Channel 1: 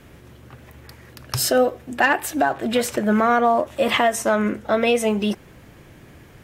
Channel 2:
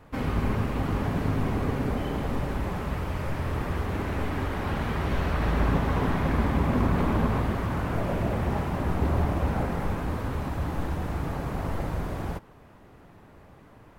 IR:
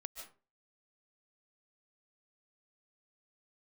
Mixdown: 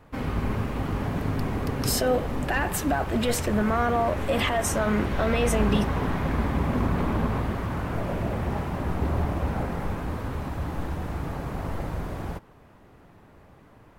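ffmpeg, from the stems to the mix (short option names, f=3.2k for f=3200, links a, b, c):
-filter_complex "[0:a]alimiter=limit=-15.5dB:level=0:latency=1:release=20,adelay=500,volume=-1.5dB[a];[1:a]volume=-1dB[b];[a][b]amix=inputs=2:normalize=0"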